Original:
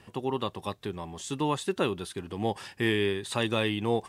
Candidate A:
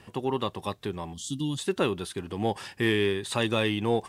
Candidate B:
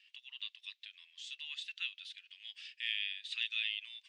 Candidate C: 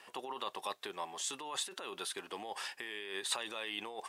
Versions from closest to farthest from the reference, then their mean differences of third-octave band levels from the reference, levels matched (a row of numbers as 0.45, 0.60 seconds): A, C, B; 1.5, 9.5, 19.5 decibels